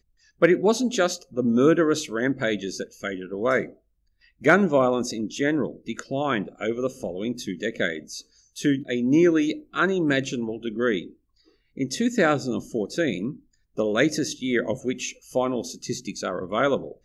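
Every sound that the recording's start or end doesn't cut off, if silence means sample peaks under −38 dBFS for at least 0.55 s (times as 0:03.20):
0:04.42–0:11.10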